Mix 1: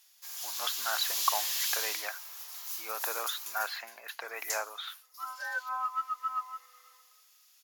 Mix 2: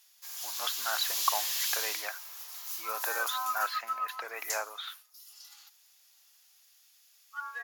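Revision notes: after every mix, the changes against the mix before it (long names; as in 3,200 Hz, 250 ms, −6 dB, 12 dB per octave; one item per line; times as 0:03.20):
second sound: entry −2.35 s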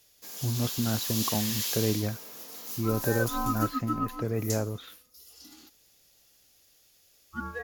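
speech −8.5 dB
master: remove high-pass filter 880 Hz 24 dB per octave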